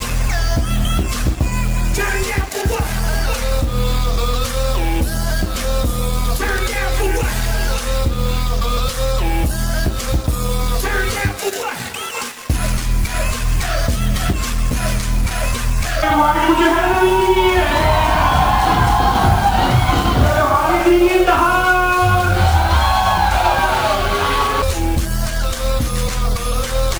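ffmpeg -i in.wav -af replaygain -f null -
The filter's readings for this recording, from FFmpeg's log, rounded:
track_gain = -1.3 dB
track_peak = 0.522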